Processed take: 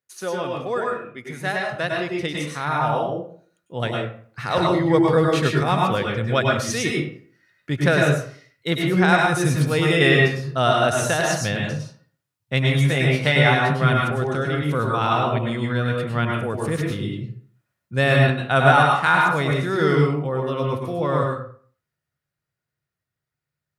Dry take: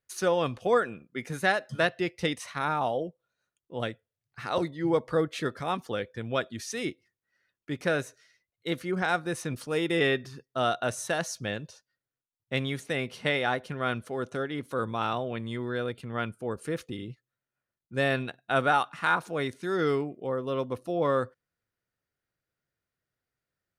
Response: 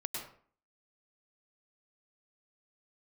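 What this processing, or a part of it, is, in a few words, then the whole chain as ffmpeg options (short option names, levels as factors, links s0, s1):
far laptop microphone: -filter_complex "[0:a]asubboost=boost=5:cutoff=120,asettb=1/sr,asplit=3[s0][s1][s2];[s0]atrim=end=12.724[s3];[s1]atrim=start=12.72:end=13.93,asetpts=PTS-STARTPTS,afade=t=in:d=0.004:c=qsin,afade=t=out:st=1.206:d=0.004:c=qsin,asplit=2[s4][s5];[s5]adelay=15,volume=0.562[s6];[s4][s6]amix=inputs=2:normalize=0,atrim=end_sample=53361[s7];[s2]atrim=start=13.926[s8];[s3][s7]acrossfade=d=0.004:c1=hsin:c2=qsin[s9];[s9][s8]acrossfade=d=0.004:c1=qsin:c2=hsin[s10];[1:a]atrim=start_sample=2205[s11];[s10][s11]afir=irnorm=-1:irlink=0,highpass=110,dynaudnorm=f=200:g=31:m=3.76"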